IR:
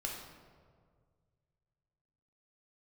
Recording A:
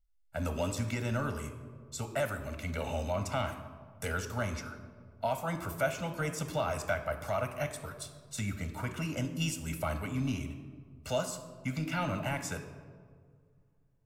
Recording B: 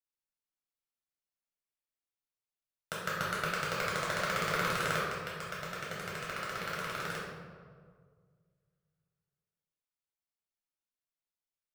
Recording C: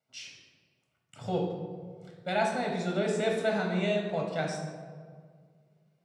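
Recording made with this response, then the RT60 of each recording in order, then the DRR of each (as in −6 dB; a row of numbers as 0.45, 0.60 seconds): C; 1.9, 1.9, 1.9 seconds; 7.5, −6.5, −0.5 decibels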